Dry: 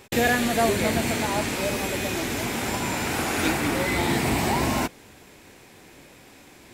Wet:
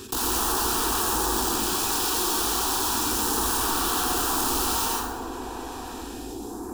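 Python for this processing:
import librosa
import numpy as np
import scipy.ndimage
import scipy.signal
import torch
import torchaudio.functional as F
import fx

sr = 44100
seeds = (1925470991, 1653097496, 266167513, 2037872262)

p1 = fx.dmg_crackle(x, sr, seeds[0], per_s=130.0, level_db=-48.0)
p2 = fx.high_shelf(p1, sr, hz=3000.0, db=-8.5)
p3 = fx.hum_notches(p2, sr, base_hz=60, count=3)
p4 = fx.rider(p3, sr, range_db=10, speed_s=2.0)
p5 = p3 + (p4 * librosa.db_to_amplitude(0.5))
p6 = fx.phaser_stages(p5, sr, stages=2, low_hz=140.0, high_hz=3500.0, hz=0.33, feedback_pct=20)
p7 = fx.highpass(p6, sr, hz=94.0, slope=6)
p8 = (np.mod(10.0 ** (21.0 / 20.0) * p7 + 1.0, 2.0) - 1.0) / 10.0 ** (21.0 / 20.0)
p9 = fx.fixed_phaser(p8, sr, hz=570.0, stages=6)
p10 = p9 + fx.echo_bbd(p9, sr, ms=368, stages=2048, feedback_pct=73, wet_db=-15.5, dry=0)
p11 = fx.rev_plate(p10, sr, seeds[1], rt60_s=0.83, hf_ratio=0.6, predelay_ms=75, drr_db=-3.0)
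p12 = fx.env_flatten(p11, sr, amount_pct=50)
y = p12 * librosa.db_to_amplitude(-1.5)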